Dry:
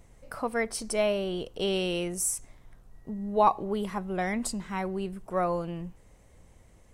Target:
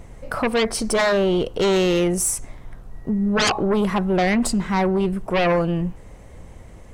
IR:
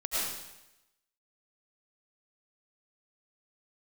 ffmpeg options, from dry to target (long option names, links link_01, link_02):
-af "highshelf=frequency=3500:gain=-8,aeval=exprs='0.316*sin(PI/2*6.31*val(0)/0.316)':channel_layout=same,volume=-5dB"